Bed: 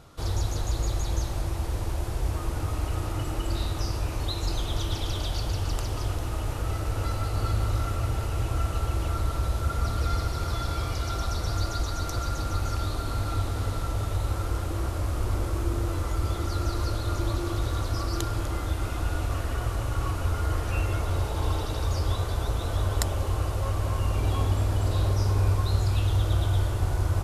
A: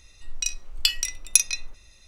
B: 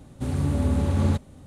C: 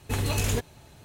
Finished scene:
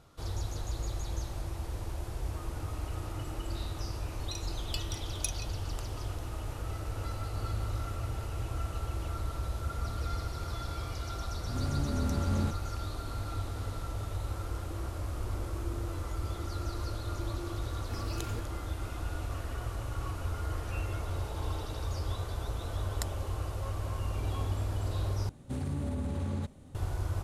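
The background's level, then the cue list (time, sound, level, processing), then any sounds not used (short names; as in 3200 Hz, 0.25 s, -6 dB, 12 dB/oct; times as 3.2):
bed -8 dB
3.89 add A -17.5 dB
11.34 add B -9.5 dB + spectral swells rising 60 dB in 0.37 s
17.8 add C -15 dB + bell 11000 Hz -6.5 dB 2.3 oct
25.29 replace with B -5.5 dB + compressor, threshold -24 dBFS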